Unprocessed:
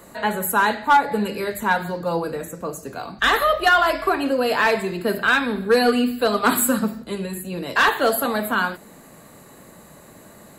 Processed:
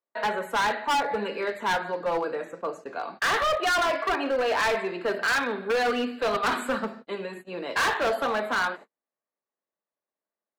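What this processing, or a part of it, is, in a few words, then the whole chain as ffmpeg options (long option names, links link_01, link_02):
walkie-talkie: -af "highpass=420,lowpass=2800,asoftclip=type=hard:threshold=-21.5dB,agate=range=-45dB:threshold=-41dB:ratio=16:detection=peak"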